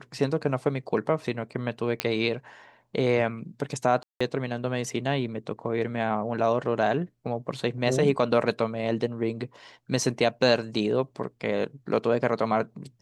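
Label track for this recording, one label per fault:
2.000000	2.000000	click −8 dBFS
4.030000	4.210000	drop-out 175 ms

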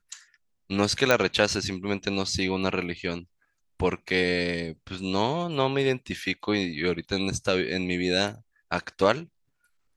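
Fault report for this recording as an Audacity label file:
1.110000	1.110000	click −6 dBFS

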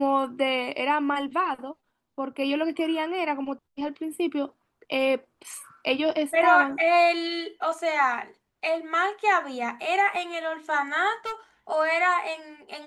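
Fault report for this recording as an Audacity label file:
11.250000	11.330000	clipping −27.5 dBFS

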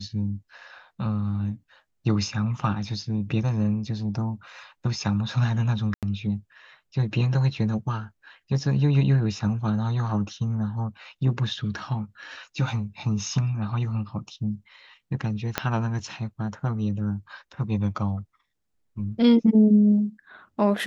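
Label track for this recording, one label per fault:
5.940000	6.030000	drop-out 87 ms
15.580000	15.580000	click −7 dBFS

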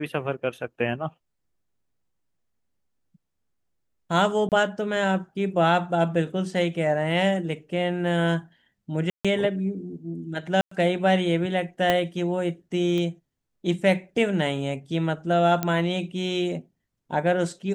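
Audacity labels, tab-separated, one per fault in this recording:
4.490000	4.520000	drop-out 28 ms
9.100000	9.250000	drop-out 146 ms
10.610000	10.710000	drop-out 104 ms
11.900000	11.900000	click −8 dBFS
12.980000	12.980000	click −18 dBFS
15.630000	15.630000	click −10 dBFS

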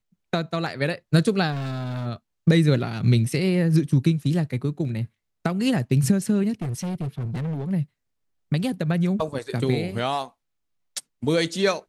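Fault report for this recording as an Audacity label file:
1.510000	2.070000	clipping −25.5 dBFS
6.620000	7.710000	clipping −25 dBFS

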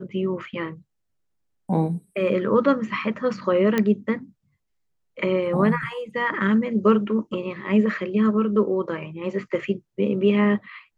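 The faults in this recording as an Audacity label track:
3.780000	3.780000	click −9 dBFS

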